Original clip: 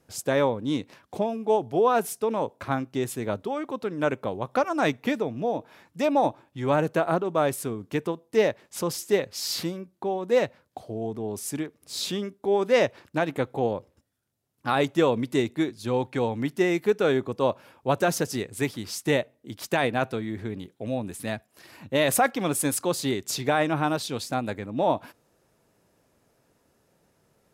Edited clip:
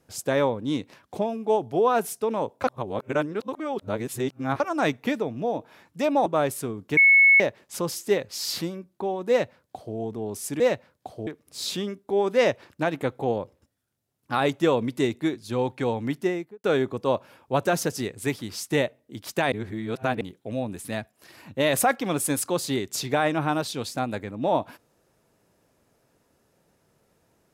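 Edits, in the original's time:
2.64–4.6 reverse
6.26–7.28 cut
7.99–8.42 bleep 2200 Hz -12 dBFS
10.31–10.98 copy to 11.62
16.47–16.99 studio fade out
19.87–20.56 reverse

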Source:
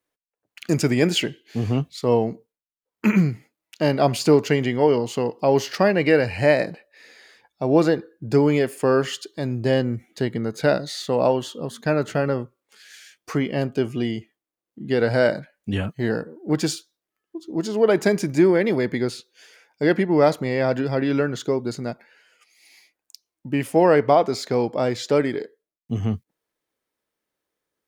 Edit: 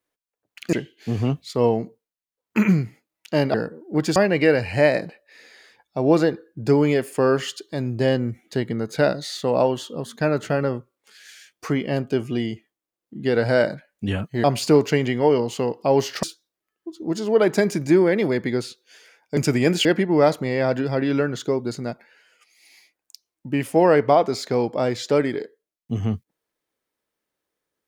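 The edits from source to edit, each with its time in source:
0.73–1.21 move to 19.85
4.02–5.81 swap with 16.09–16.71

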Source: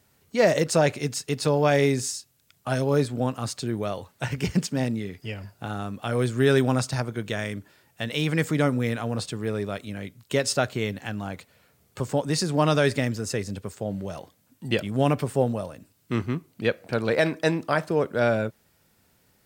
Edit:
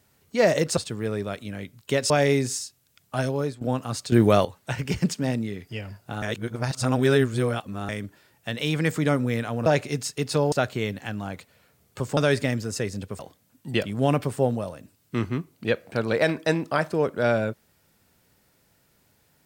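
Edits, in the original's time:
0.77–1.63 swap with 9.19–10.52
2.74–3.14 fade out, to -14.5 dB
3.65–3.98 gain +11 dB
5.75–7.42 reverse
12.17–12.71 cut
13.73–14.16 cut

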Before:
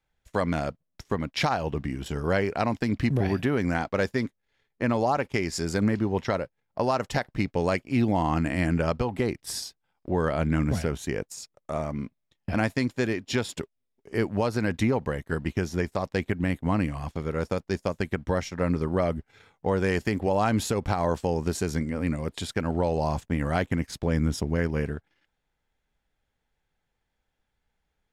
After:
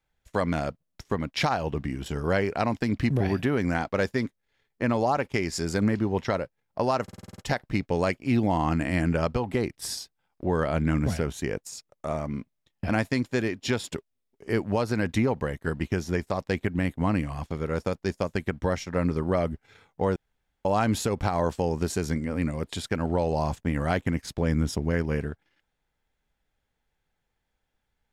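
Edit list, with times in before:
7.03 stutter 0.05 s, 8 plays
19.81–20.3 room tone

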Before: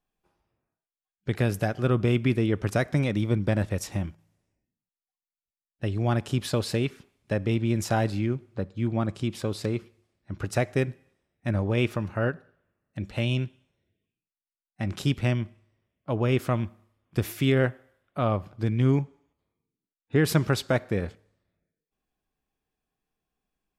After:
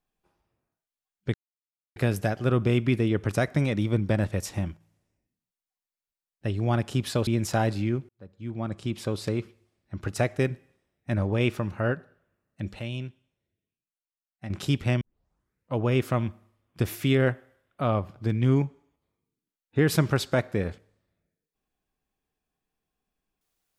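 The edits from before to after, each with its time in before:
1.34 insert silence 0.62 s
6.65–7.64 cut
8.46–9.42 fade in linear
13.16–14.87 gain -7.5 dB
15.38 tape start 0.76 s

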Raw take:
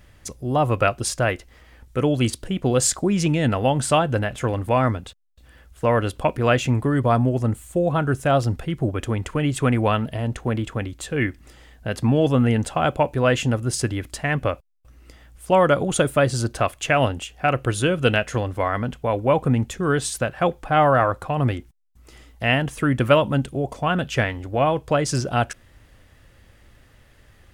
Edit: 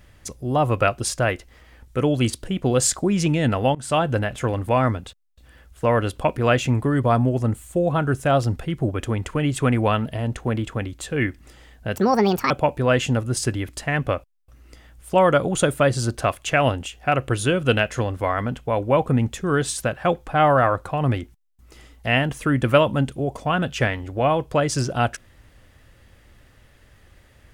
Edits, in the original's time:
3.75–4.03 fade in, from -22.5 dB
11.96–12.87 speed 167%

